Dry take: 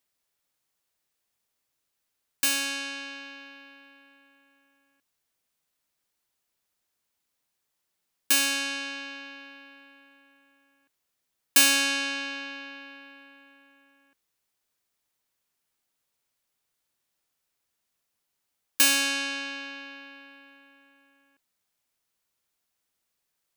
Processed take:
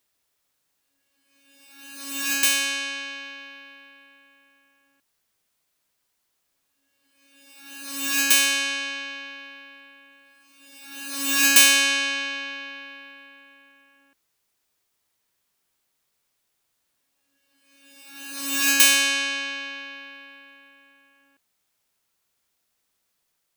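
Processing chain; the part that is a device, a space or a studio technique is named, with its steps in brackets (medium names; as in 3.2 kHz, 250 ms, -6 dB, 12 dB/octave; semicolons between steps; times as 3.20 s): reverse reverb (reverse; reverberation RT60 1.6 s, pre-delay 111 ms, DRR 3.5 dB; reverse); trim +4 dB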